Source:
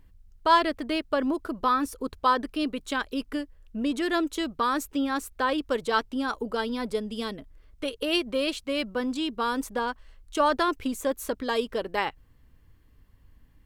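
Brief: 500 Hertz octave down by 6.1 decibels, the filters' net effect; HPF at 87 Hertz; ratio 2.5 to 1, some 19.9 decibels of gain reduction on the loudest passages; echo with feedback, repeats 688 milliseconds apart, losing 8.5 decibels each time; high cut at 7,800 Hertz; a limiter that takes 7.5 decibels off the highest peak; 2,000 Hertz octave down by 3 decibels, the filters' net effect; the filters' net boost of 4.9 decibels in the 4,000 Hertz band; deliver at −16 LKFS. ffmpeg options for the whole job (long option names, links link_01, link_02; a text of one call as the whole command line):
ffmpeg -i in.wav -af "highpass=87,lowpass=7800,equalizer=frequency=500:width_type=o:gain=-7.5,equalizer=frequency=2000:width_type=o:gain=-6,equalizer=frequency=4000:width_type=o:gain=9,acompressor=threshold=-49dB:ratio=2.5,alimiter=level_in=11.5dB:limit=-24dB:level=0:latency=1,volume=-11.5dB,aecho=1:1:688|1376|2064|2752:0.376|0.143|0.0543|0.0206,volume=30dB" out.wav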